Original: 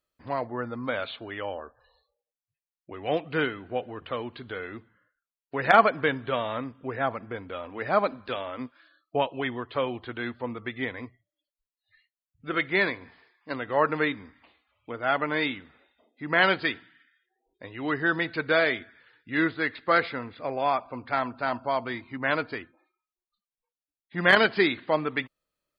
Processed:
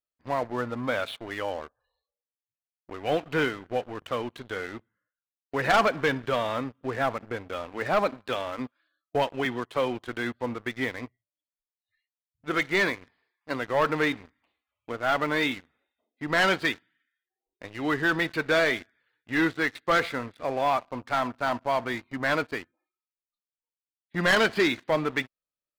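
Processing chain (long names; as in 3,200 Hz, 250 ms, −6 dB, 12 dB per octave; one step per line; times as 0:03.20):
0:09.45–0:10.08: high-pass filter 110 Hz 24 dB per octave
leveller curve on the samples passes 3
level −9 dB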